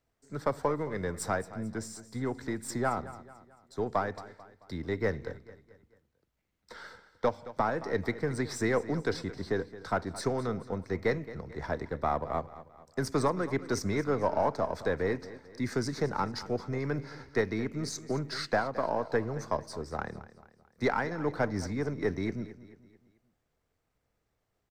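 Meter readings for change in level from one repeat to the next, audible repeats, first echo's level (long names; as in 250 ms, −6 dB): −7.0 dB, 3, −16.0 dB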